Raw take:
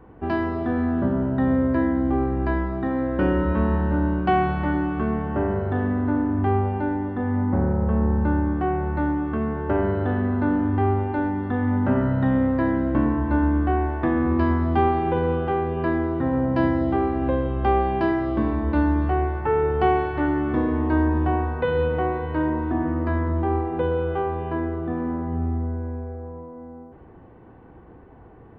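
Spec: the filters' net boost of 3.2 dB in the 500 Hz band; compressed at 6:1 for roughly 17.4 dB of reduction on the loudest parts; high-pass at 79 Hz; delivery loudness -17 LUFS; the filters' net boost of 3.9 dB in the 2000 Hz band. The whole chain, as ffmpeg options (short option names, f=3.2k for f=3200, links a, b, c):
-af "highpass=79,equalizer=f=500:t=o:g=4,equalizer=f=2k:t=o:g=5,acompressor=threshold=-34dB:ratio=6,volume=19.5dB"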